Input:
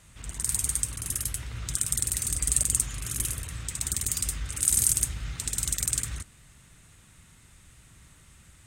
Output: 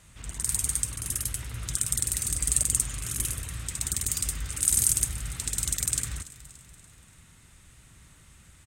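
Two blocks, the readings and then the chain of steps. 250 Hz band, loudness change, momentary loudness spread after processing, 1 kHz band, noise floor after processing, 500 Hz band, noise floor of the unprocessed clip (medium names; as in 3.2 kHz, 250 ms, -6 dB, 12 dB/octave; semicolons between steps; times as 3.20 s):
0.0 dB, 0.0 dB, 10 LU, 0.0 dB, -56 dBFS, 0.0 dB, -56 dBFS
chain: feedback delay 288 ms, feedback 51%, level -18 dB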